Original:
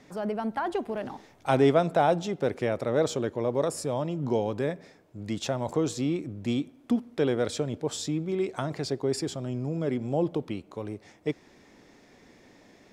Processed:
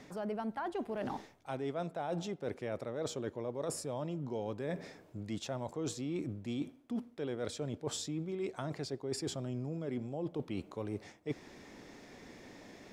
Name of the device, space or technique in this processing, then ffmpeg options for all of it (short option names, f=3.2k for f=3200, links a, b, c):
compression on the reversed sound: -af "areverse,acompressor=threshold=-37dB:ratio=12,areverse,volume=2.5dB"